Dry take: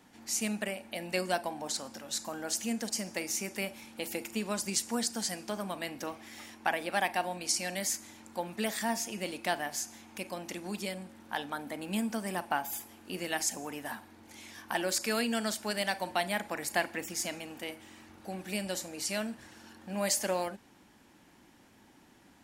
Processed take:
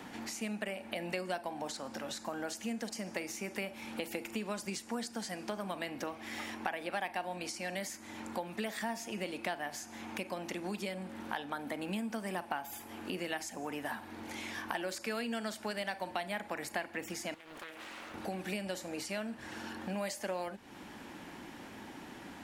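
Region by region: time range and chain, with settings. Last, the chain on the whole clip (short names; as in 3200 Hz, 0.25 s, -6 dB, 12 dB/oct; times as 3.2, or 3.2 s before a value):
17.34–18.14 HPF 810 Hz 6 dB/oct + compressor 10:1, threshold -53 dBFS + Doppler distortion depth 0.86 ms
whole clip: compressor 2.5:1, threshold -46 dBFS; tone controls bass -2 dB, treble -8 dB; three-band squash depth 40%; gain +7.5 dB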